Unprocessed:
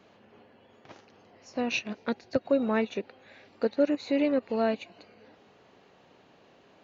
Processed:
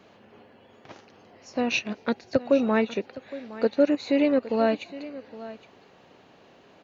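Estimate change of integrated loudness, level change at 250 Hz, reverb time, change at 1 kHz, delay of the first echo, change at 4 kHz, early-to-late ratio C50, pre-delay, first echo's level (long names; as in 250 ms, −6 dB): +4.0 dB, +4.0 dB, no reverb audible, +4.0 dB, 814 ms, +4.0 dB, no reverb audible, no reverb audible, −16.5 dB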